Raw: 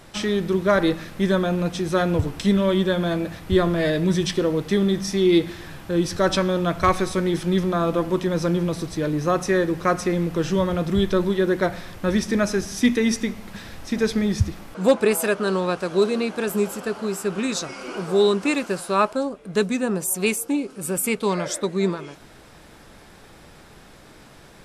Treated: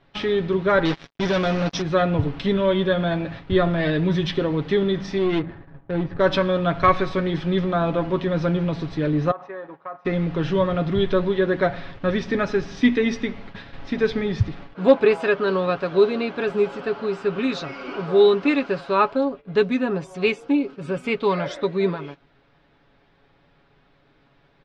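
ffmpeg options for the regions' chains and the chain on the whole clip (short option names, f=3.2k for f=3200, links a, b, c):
-filter_complex "[0:a]asettb=1/sr,asplit=3[a][b][c];[a]atrim=end=0.854[d];[b]atrim=start=0.85:end=1.82,asetpts=PTS-STARTPTS,afade=t=in:d=0.004:c=qsin,afade=t=out:st=0.966:d=0.004:c=qsin,asoftclip=type=hard:threshold=-17dB,lowpass=f=5.7k:t=q:w=14,acrusher=bits=3:mix=0:aa=0.5[e];[c]atrim=start=1.816[f];[d][e]acrossfade=d=0.004:c1=hsin:c2=qsin[g];[g][f]acrossfade=d=0.004:c1=qsin:c2=hsin,asettb=1/sr,asplit=3[h][i][j];[h]atrim=end=5.184[k];[i]atrim=start=5.18:end=6.2,asetpts=PTS-STARTPTS,afade=t=in:d=0.004:c=qsin,afade=t=out:st=1.016:d=0.004:c=qsin,aeval=exprs='(tanh(3.55*val(0)+0.2)-tanh(0.2))/3.55':c=same,equalizer=f=1.8k:w=5.7:g=5,adynamicsmooth=sensitivity=2:basefreq=630[l];[j]atrim=start=6.196[m];[k][l]acrossfade=d=0.004:c1=hsin:c2=qsin[n];[n][m]acrossfade=d=0.004:c1=qsin:c2=hsin,asettb=1/sr,asplit=3[o][p][q];[o]atrim=end=9.314[r];[p]atrim=start=9.31:end=10.05,asetpts=PTS-STARTPTS,afade=t=in:d=0.004:c=qsin,afade=t=out:st=0.736:d=0.004:c=qsin,bandpass=f=900:t=q:w=2.2,acompressor=threshold=-31dB:ratio=5:attack=3.2:release=140:knee=1:detection=peak[s];[q]atrim=start=10.046[t];[r][s]acrossfade=d=0.004:c1=hsin:c2=qsin[u];[u][t]acrossfade=d=0.004:c1=qsin:c2=hsin,agate=range=-13dB:threshold=-37dB:ratio=16:detection=peak,lowpass=f=3.9k:w=0.5412,lowpass=f=3.9k:w=1.3066,aecho=1:1:7.2:0.52"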